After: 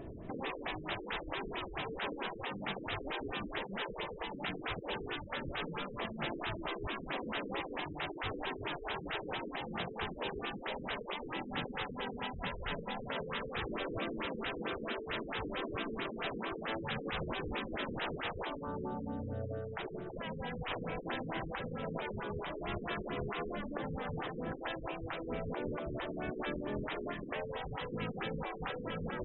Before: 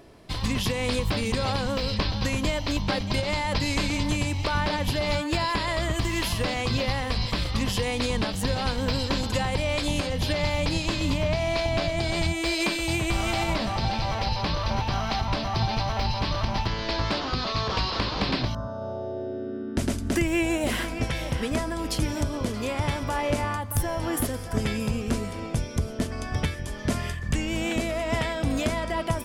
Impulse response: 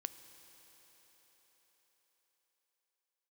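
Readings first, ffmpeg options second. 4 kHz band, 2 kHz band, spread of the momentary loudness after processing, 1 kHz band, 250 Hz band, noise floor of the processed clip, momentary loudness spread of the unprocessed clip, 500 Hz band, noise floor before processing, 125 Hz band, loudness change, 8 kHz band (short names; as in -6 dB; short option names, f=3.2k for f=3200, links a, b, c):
-13.5 dB, -9.5 dB, 2 LU, -10.5 dB, -13.0 dB, -46 dBFS, 4 LU, -10.5 dB, -33 dBFS, -17.5 dB, -12.5 dB, under -40 dB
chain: -af "afftfilt=real='re*lt(hypot(re,im),0.0708)':imag='im*lt(hypot(re,im),0.0708)':win_size=1024:overlap=0.75,tiltshelf=f=650:g=5,afftfilt=real='re*lt(b*sr/1024,470*pow(4000/470,0.5+0.5*sin(2*PI*4.5*pts/sr)))':imag='im*lt(b*sr/1024,470*pow(4000/470,0.5+0.5*sin(2*PI*4.5*pts/sr)))':win_size=1024:overlap=0.75,volume=2dB"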